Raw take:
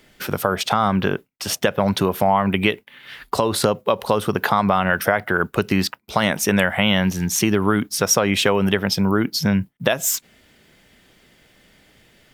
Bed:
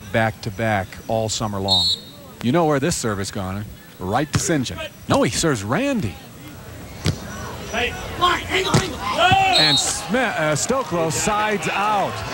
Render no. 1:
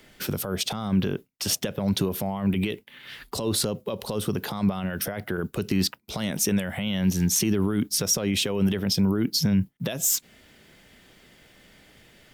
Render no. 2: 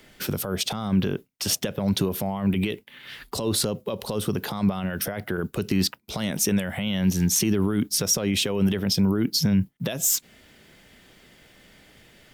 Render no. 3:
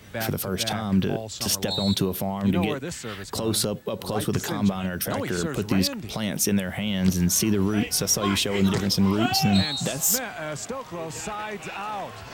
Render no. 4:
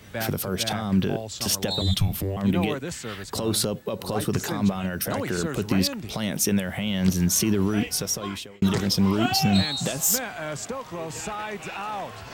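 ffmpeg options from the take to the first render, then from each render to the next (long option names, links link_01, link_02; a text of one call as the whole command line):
ffmpeg -i in.wav -filter_complex "[0:a]alimiter=limit=-12.5dB:level=0:latency=1:release=24,acrossover=split=460|3000[link_01][link_02][link_03];[link_02]acompressor=threshold=-48dB:ratio=2[link_04];[link_01][link_04][link_03]amix=inputs=3:normalize=0" out.wav
ffmpeg -i in.wav -af "volume=1dB" out.wav
ffmpeg -i in.wav -i bed.wav -filter_complex "[1:a]volume=-12.5dB[link_01];[0:a][link_01]amix=inputs=2:normalize=0" out.wav
ffmpeg -i in.wav -filter_complex "[0:a]asettb=1/sr,asplit=3[link_01][link_02][link_03];[link_01]atrim=end=1.814[link_04];[link_02]atrim=start=1.81:end=2.37,asetpts=PTS-STARTPTS,afade=type=in:duration=0.004:curve=qsin,afade=type=out:start_time=0.556:duration=0.004:curve=qsin,afreqshift=-290[link_05];[link_03]atrim=start=2.366[link_06];[link_04][link_05]acrossfade=duration=0.004:curve1=hsin:curve2=qsin[link_07];[link_07][link_06]acrossfade=duration=0.004:curve1=qsin:curve2=hsin,asettb=1/sr,asplit=3[link_08][link_09][link_10];[link_08]atrim=end=3.854[link_11];[link_09]atrim=start=3.85:end=5.46,asetpts=PTS-STARTPTS,afade=type=in:duration=0.004:curve=qsin,afade=type=out:start_time=1.606:duration=0.004:curve=qsin,bandreject=frequency=3300:width=12[link_12];[link_10]atrim=start=5.456[link_13];[link_11][link_12]acrossfade=duration=0.004:curve1=hsin:curve2=qsin[link_14];[link_14][link_13]acrossfade=duration=0.004:curve1=qsin:curve2=hsin,asplit=2[link_15][link_16];[link_15]atrim=end=8.62,asetpts=PTS-STARTPTS,afade=type=out:start_time=7.75:duration=0.87[link_17];[link_16]atrim=start=8.62,asetpts=PTS-STARTPTS,afade=type=in:duration=0.004:curve=hsin[link_18];[link_17][link_18]concat=n=2:v=0:a=1" out.wav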